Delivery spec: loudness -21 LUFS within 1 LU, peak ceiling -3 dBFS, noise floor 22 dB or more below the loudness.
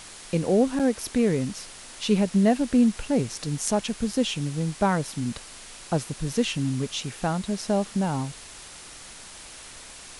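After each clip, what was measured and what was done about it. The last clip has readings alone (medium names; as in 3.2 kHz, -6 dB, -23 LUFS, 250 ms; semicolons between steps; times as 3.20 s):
dropouts 1; longest dropout 6.9 ms; noise floor -44 dBFS; noise floor target -48 dBFS; loudness -25.5 LUFS; peak level -7.5 dBFS; loudness target -21.0 LUFS
-> interpolate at 0.79 s, 6.9 ms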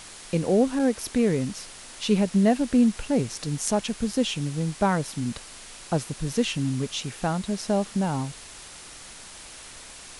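dropouts 0; noise floor -44 dBFS; noise floor target -48 dBFS
-> noise reduction 6 dB, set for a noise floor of -44 dBFS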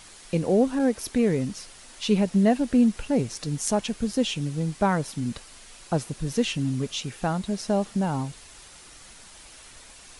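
noise floor -48 dBFS; loudness -25.5 LUFS; peak level -8.0 dBFS; loudness target -21.0 LUFS
-> trim +4.5 dB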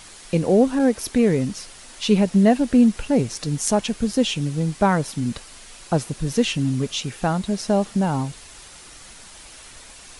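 loudness -21.0 LUFS; peak level -3.5 dBFS; noise floor -44 dBFS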